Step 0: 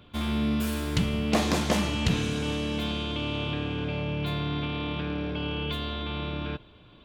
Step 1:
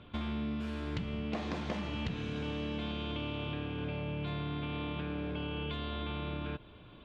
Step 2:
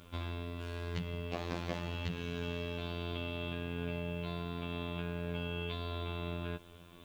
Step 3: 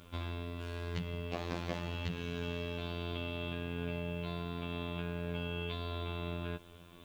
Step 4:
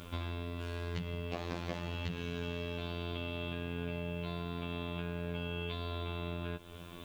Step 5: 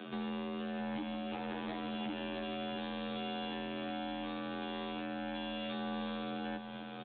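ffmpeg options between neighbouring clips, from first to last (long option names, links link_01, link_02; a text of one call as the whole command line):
ffmpeg -i in.wav -af "lowpass=3300,acompressor=threshold=-34dB:ratio=6" out.wav
ffmpeg -i in.wav -af "afftfilt=real='hypot(re,im)*cos(PI*b)':imag='0':win_size=2048:overlap=0.75,acrusher=bits=11:mix=0:aa=0.000001,highshelf=frequency=5700:gain=5,volume=2dB" out.wav
ffmpeg -i in.wav -af anull out.wav
ffmpeg -i in.wav -af "acompressor=threshold=-47dB:ratio=2,volume=7.5dB" out.wav
ffmpeg -i in.wav -af "afreqshift=130,aresample=8000,asoftclip=type=hard:threshold=-38dB,aresample=44100,aecho=1:1:663:0.422,volume=2dB" out.wav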